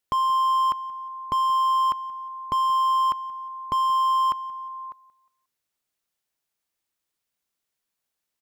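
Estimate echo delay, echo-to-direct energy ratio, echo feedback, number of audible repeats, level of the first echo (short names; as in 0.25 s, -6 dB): 0.179 s, -20.0 dB, 33%, 2, -20.5 dB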